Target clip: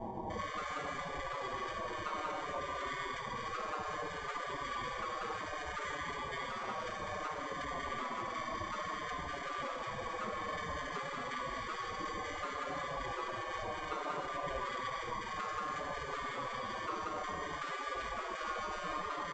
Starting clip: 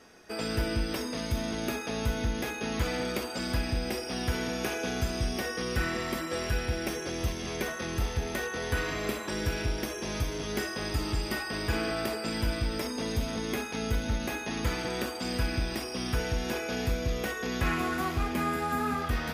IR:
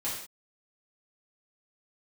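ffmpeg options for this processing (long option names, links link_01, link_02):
-filter_complex "[0:a]highshelf=frequency=4200:gain=12,aresample=16000,acrusher=samples=12:mix=1:aa=0.000001,aresample=44100,firequalizer=gain_entry='entry(220,0);entry(550,-2);entry(850,10);entry(1600,-15);entry(3200,-19);entry(5300,-25)':delay=0.05:min_phase=1,asplit=2[link_01][link_02];[1:a]atrim=start_sample=2205,asetrate=24696,aresample=44100,adelay=71[link_03];[link_02][link_03]afir=irnorm=-1:irlink=0,volume=-13.5dB[link_04];[link_01][link_04]amix=inputs=2:normalize=0,afftfilt=real='re*lt(hypot(re,im),0.0398)':imag='im*lt(hypot(re,im),0.0398)':win_size=1024:overlap=0.75,asplit=2[link_05][link_06];[link_06]adelay=5.7,afreqshift=-0.6[link_07];[link_05][link_07]amix=inputs=2:normalize=1,volume=13dB"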